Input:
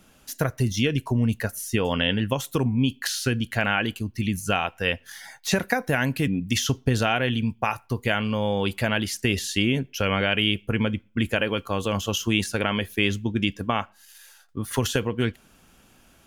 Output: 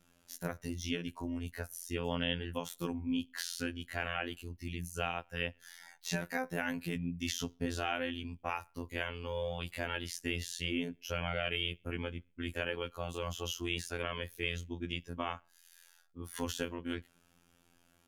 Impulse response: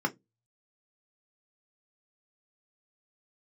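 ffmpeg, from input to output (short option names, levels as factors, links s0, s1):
-af "afftfilt=real='hypot(re,im)*cos(PI*b)':imag='0':win_size=2048:overlap=0.75,atempo=0.9,volume=0.355"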